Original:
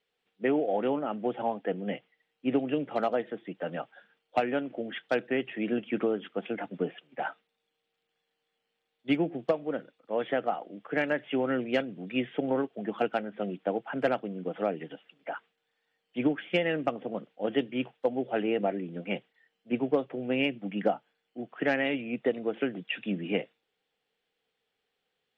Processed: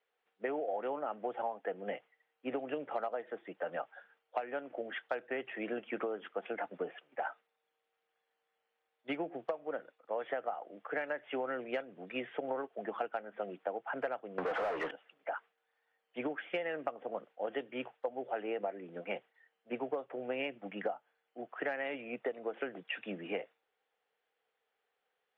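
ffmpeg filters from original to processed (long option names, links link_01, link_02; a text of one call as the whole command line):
ffmpeg -i in.wav -filter_complex "[0:a]asettb=1/sr,asplit=3[link_01][link_02][link_03];[link_01]atrim=end=14.384[link_04];[link_02]atrim=start=14.38:end=14.91,asetpts=PTS-STARTPTS,afade=type=in:duration=0.004:curve=qsin,afade=type=out:start_time=0.526:duration=0.004:curve=qsin,asplit=2[link_05][link_06];[link_06]highpass=frequency=720:poles=1,volume=38dB,asoftclip=type=tanh:threshold=-16dB[link_07];[link_05][link_07]amix=inputs=2:normalize=0,lowpass=frequency=2200:poles=1,volume=-6dB[link_08];[link_03]atrim=start=14.906[link_09];[link_04][link_08]acrossfade=duration=0.004:curve1=hsin:curve2=qsin[link_10];[link_10][link_09]acrossfade=duration=0.004:curve1=qsin:curve2=hsin,acrossover=split=470 2000:gain=0.126 1 0.2[link_11][link_12][link_13];[link_11][link_12][link_13]amix=inputs=3:normalize=0,acompressor=threshold=-36dB:ratio=6,volume=3dB" out.wav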